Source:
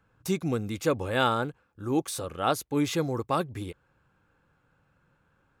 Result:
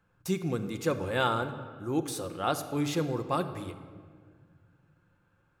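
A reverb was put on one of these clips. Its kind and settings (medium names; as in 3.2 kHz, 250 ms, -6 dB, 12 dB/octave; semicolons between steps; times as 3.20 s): simulated room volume 2700 m³, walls mixed, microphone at 0.87 m; trim -3.5 dB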